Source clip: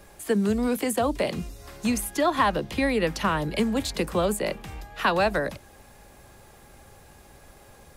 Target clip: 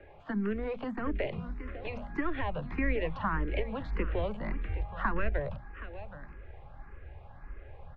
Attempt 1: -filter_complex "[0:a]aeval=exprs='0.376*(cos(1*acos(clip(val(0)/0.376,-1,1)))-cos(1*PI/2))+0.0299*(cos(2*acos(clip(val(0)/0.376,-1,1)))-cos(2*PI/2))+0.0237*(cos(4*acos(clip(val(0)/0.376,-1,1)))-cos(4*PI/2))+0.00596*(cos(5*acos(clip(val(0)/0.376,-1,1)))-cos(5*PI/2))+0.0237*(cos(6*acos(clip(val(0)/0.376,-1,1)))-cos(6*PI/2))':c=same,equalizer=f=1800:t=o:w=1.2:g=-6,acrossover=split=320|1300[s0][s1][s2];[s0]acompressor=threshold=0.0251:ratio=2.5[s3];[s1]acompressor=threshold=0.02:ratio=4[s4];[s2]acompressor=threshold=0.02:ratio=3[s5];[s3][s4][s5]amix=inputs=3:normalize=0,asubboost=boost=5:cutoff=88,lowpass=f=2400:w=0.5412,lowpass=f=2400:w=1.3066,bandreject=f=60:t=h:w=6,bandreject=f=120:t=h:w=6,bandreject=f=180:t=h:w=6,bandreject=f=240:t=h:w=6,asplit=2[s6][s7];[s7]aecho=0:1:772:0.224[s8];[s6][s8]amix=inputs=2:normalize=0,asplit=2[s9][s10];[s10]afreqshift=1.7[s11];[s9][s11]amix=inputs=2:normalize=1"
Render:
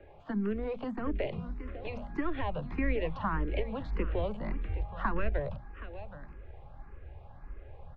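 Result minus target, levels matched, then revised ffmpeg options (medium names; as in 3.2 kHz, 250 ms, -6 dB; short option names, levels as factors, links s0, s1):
2 kHz band -3.0 dB
-filter_complex "[0:a]aeval=exprs='0.376*(cos(1*acos(clip(val(0)/0.376,-1,1)))-cos(1*PI/2))+0.0299*(cos(2*acos(clip(val(0)/0.376,-1,1)))-cos(2*PI/2))+0.0237*(cos(4*acos(clip(val(0)/0.376,-1,1)))-cos(4*PI/2))+0.00596*(cos(5*acos(clip(val(0)/0.376,-1,1)))-cos(5*PI/2))+0.0237*(cos(6*acos(clip(val(0)/0.376,-1,1)))-cos(6*PI/2))':c=same,acrossover=split=320|1300[s0][s1][s2];[s0]acompressor=threshold=0.0251:ratio=2.5[s3];[s1]acompressor=threshold=0.02:ratio=4[s4];[s2]acompressor=threshold=0.02:ratio=3[s5];[s3][s4][s5]amix=inputs=3:normalize=0,asubboost=boost=5:cutoff=88,lowpass=f=2400:w=0.5412,lowpass=f=2400:w=1.3066,bandreject=f=60:t=h:w=6,bandreject=f=120:t=h:w=6,bandreject=f=180:t=h:w=6,bandreject=f=240:t=h:w=6,asplit=2[s6][s7];[s7]aecho=0:1:772:0.224[s8];[s6][s8]amix=inputs=2:normalize=0,asplit=2[s9][s10];[s10]afreqshift=1.7[s11];[s9][s11]amix=inputs=2:normalize=1"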